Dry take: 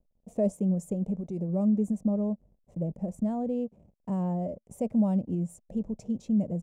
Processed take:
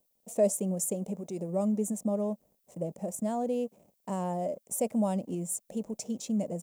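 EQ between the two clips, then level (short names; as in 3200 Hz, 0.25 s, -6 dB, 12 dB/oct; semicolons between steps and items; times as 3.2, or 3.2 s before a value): RIAA curve recording; low shelf 120 Hz -9.5 dB; +5.5 dB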